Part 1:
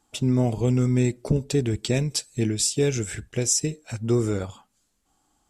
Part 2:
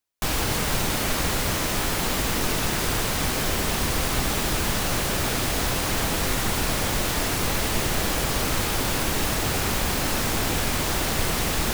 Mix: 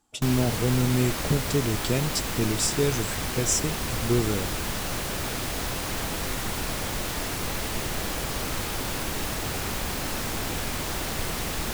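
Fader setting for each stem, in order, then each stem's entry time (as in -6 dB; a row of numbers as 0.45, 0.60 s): -2.5, -5.5 dB; 0.00, 0.00 s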